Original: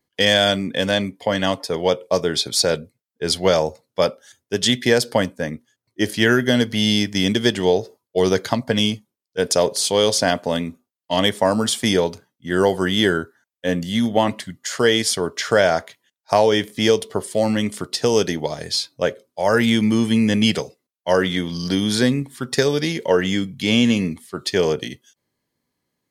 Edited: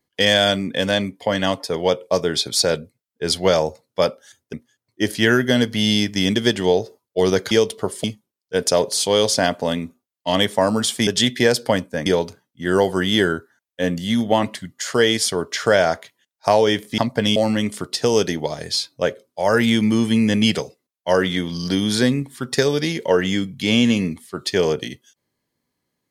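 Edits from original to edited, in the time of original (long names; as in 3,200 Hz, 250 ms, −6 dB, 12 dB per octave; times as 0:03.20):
0:04.53–0:05.52: move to 0:11.91
0:08.50–0:08.88: swap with 0:16.83–0:17.36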